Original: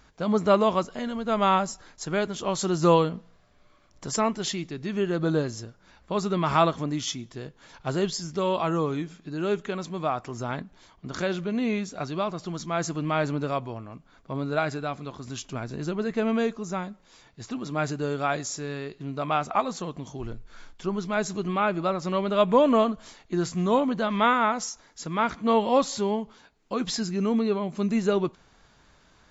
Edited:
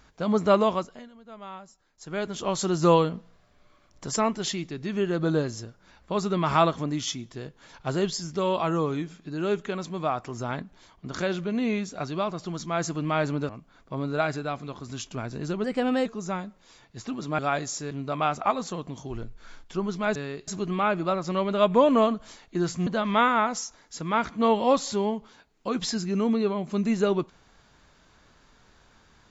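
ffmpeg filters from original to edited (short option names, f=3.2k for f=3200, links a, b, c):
-filter_complex "[0:a]asplit=11[a][b][c][d][e][f][g][h][i][j][k];[a]atrim=end=1.09,asetpts=PTS-STARTPTS,afade=t=out:st=0.62:d=0.47:silence=0.105925[l];[b]atrim=start=1.09:end=1.92,asetpts=PTS-STARTPTS,volume=-19.5dB[m];[c]atrim=start=1.92:end=13.492,asetpts=PTS-STARTPTS,afade=t=in:d=0.47:silence=0.105925[n];[d]atrim=start=13.868:end=16.024[o];[e]atrim=start=16.02:end=16.49,asetpts=PTS-STARTPTS,asetrate=49833,aresample=44100,atrim=end_sample=18342,asetpts=PTS-STARTPTS[p];[f]atrim=start=16.486:end=17.822[q];[g]atrim=start=18.158:end=18.682[r];[h]atrim=start=18.998:end=21.252[s];[i]atrim=start=18.678:end=19.002[t];[j]atrim=start=21.248:end=23.642[u];[k]atrim=start=23.918[v];[l][m][n]concat=n=3:v=0:a=1[w];[w][o]acrossfade=d=0.004:c1=hsin:c2=hsin[x];[x][p]acrossfade=d=0.004:c1=hsin:c2=hsin[y];[y][q]acrossfade=d=0.004:c1=hsin:c2=hsin[z];[z][r]acrossfade=d=0.004:c1=hsin:c2=hsin[aa];[aa][s]acrossfade=d=0.004:c1=hsin:c2=hsin[ab];[ab][t]acrossfade=d=0.004:c1=hsin:c2=hsin[ac];[ac][u]acrossfade=d=0.004:c1=hsin:c2=hsin[ad];[ad][v]acrossfade=d=0.004:c1=hsin:c2=hsin"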